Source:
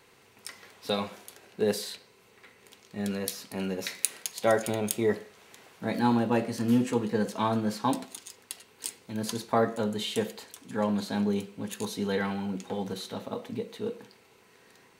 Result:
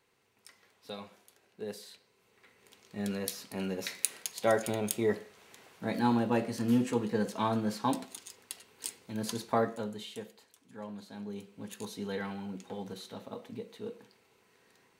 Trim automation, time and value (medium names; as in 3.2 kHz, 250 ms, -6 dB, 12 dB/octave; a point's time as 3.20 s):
1.80 s -13.5 dB
2.96 s -3 dB
9.54 s -3 dB
10.31 s -15.5 dB
11.17 s -15.5 dB
11.64 s -7.5 dB